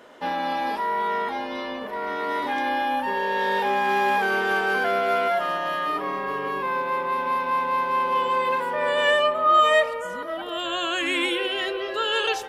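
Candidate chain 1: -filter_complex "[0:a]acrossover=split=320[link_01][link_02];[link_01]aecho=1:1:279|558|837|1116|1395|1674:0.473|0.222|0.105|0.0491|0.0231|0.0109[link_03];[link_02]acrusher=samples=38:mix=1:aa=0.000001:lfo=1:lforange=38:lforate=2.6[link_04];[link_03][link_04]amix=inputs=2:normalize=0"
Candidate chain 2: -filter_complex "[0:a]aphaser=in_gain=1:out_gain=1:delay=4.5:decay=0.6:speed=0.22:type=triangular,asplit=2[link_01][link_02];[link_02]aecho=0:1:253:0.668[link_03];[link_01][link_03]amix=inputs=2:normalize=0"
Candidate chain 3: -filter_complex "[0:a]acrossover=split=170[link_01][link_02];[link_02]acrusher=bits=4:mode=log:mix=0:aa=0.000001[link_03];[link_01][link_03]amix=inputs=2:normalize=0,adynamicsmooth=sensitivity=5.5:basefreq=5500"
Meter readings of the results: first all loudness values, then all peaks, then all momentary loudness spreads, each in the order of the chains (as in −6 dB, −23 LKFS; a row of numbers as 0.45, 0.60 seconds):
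−24.5, −20.0, −23.5 LKFS; −8.0, −1.5, −8.0 dBFS; 9, 9, 9 LU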